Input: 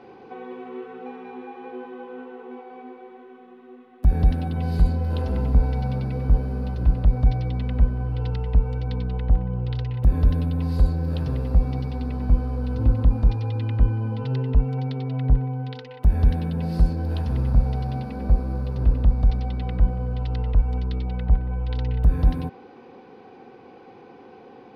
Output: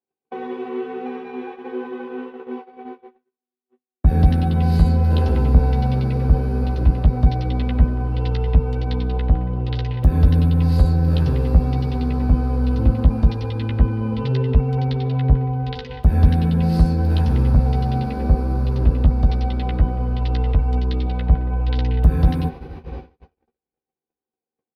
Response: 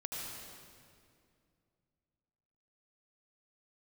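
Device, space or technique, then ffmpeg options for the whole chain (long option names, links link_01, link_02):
ducked reverb: -filter_complex "[0:a]asplit=3[link_01][link_02][link_03];[1:a]atrim=start_sample=2205[link_04];[link_02][link_04]afir=irnorm=-1:irlink=0[link_05];[link_03]apad=whole_len=1091682[link_06];[link_05][link_06]sidechaincompress=threshold=-29dB:ratio=8:attack=5.8:release=367,volume=-11.5dB[link_07];[link_01][link_07]amix=inputs=2:normalize=0,highpass=frequency=62:poles=1,agate=range=-55dB:threshold=-37dB:ratio=16:detection=peak,equalizer=frequency=1000:width=1.5:gain=-2,asplit=2[link_08][link_09];[link_09]adelay=13,volume=-6dB[link_10];[link_08][link_10]amix=inputs=2:normalize=0,volume=6dB"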